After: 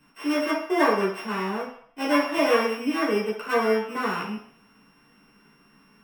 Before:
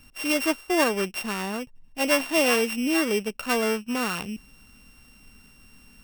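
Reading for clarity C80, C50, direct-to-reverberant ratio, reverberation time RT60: 9.5 dB, 5.0 dB, -6.5 dB, 0.60 s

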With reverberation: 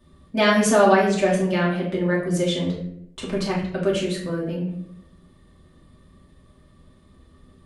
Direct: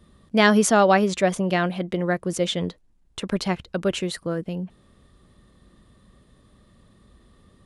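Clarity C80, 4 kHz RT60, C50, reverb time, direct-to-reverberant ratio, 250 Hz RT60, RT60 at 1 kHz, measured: 8.5 dB, 0.45 s, 5.0 dB, 0.75 s, -5.5 dB, 1.1 s, 0.60 s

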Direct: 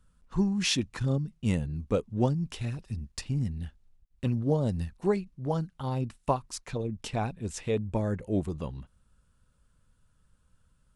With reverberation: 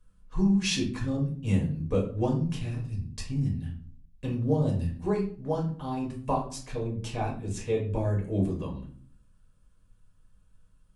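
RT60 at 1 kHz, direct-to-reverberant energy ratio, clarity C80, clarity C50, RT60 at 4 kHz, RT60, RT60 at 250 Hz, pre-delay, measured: 0.40 s, -2.5 dB, 12.5 dB, 8.0 dB, 0.35 s, 0.50 s, 0.85 s, 4 ms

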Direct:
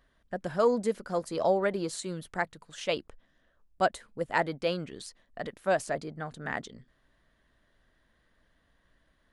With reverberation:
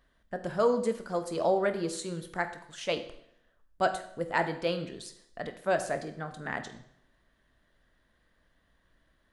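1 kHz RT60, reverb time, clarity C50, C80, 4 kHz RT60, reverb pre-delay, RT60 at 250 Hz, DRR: 0.70 s, 0.70 s, 11.0 dB, 14.5 dB, 0.65 s, 16 ms, 0.70 s, 8.0 dB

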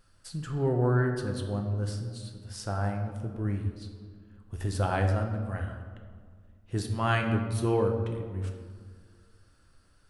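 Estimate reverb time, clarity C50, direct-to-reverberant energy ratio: 1.9 s, 6.0 dB, 3.0 dB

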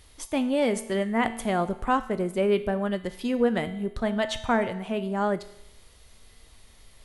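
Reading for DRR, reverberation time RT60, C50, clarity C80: 10.0 dB, 0.85 s, 13.5 dB, 15.5 dB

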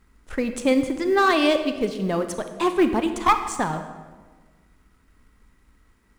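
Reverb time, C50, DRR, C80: 1.4 s, 9.5 dB, 8.0 dB, 11.0 dB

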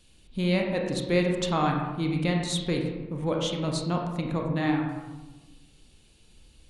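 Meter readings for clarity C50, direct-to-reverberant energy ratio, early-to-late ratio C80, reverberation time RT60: 3.5 dB, 1.0 dB, 5.5 dB, 1.2 s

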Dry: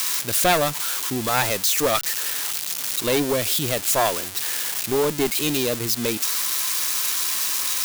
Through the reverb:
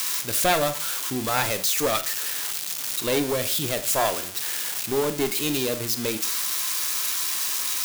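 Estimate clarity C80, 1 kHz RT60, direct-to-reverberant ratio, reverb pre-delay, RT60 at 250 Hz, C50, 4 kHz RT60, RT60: 18.0 dB, 0.45 s, 10.0 dB, 18 ms, 0.45 s, 14.0 dB, 0.40 s, 0.45 s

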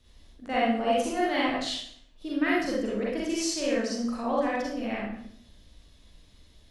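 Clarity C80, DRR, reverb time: 4.0 dB, -6.0 dB, 0.65 s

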